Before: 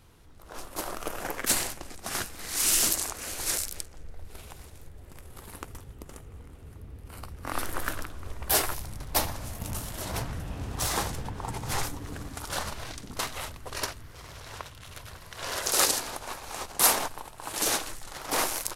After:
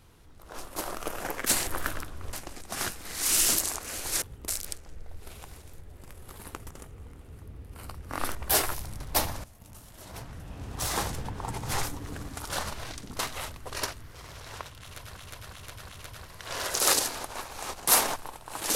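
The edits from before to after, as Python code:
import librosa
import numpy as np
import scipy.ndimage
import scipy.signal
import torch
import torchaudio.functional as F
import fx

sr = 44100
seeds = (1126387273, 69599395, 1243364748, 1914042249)

y = fx.edit(x, sr, fx.move(start_s=5.79, length_s=0.26, to_s=3.56),
    fx.move(start_s=7.69, length_s=0.66, to_s=1.67),
    fx.fade_in_from(start_s=9.44, length_s=1.62, curve='qua', floor_db=-16.0),
    fx.repeat(start_s=14.81, length_s=0.36, count=4), tone=tone)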